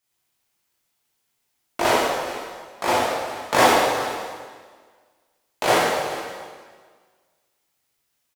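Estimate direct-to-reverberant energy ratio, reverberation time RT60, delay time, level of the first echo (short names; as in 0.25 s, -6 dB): -7.0 dB, 1.7 s, 0.42 s, -15.0 dB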